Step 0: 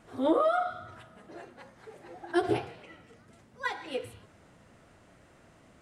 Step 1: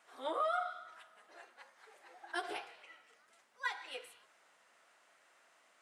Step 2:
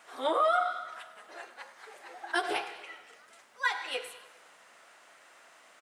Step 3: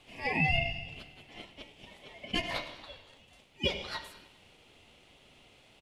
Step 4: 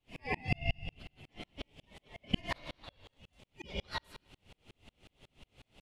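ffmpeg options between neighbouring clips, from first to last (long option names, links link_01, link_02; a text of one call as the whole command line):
ffmpeg -i in.wav -af "highpass=930,volume=-3.5dB" out.wav
ffmpeg -i in.wav -filter_complex "[0:a]asplit=2[link_01][link_02];[link_02]alimiter=level_in=5.5dB:limit=-24dB:level=0:latency=1:release=170,volume=-5.5dB,volume=2dB[link_03];[link_01][link_03]amix=inputs=2:normalize=0,aecho=1:1:100|200|300|400|500|600:0.133|0.08|0.048|0.0288|0.0173|0.0104,volume=3.5dB" out.wav
ffmpeg -i in.wav -af "equalizer=frequency=1500:width=0.53:gain=8,aeval=exprs='val(0)*sin(2*PI*1400*n/s)':channel_layout=same,volume=-5.5dB" out.wav
ffmpeg -i in.wav -af "afftfilt=real='re*lt(hypot(re,im),0.224)':imag='im*lt(hypot(re,im),0.224)':win_size=1024:overlap=0.75,lowshelf=frequency=210:gain=10.5,aeval=exprs='val(0)*pow(10,-38*if(lt(mod(-5.5*n/s,1),2*abs(-5.5)/1000),1-mod(-5.5*n/s,1)/(2*abs(-5.5)/1000),(mod(-5.5*n/s,1)-2*abs(-5.5)/1000)/(1-2*abs(-5.5)/1000))/20)':channel_layout=same,volume=4.5dB" out.wav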